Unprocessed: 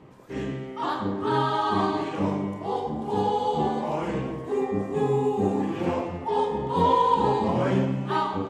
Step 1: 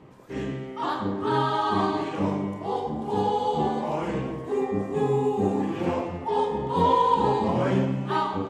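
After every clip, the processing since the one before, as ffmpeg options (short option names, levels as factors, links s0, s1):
-af anull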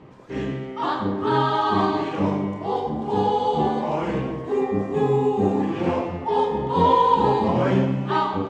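-af "lowpass=6000,volume=1.5"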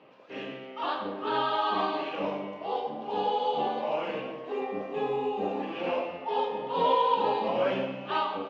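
-af "highpass=370,equalizer=f=370:t=q:w=4:g=-6,equalizer=f=570:t=q:w=4:g=5,equalizer=f=960:t=q:w=4:g=-3,equalizer=f=1900:t=q:w=4:g=-3,equalizer=f=2700:t=q:w=4:g=9,lowpass=f=5000:w=0.5412,lowpass=f=5000:w=1.3066,volume=0.562"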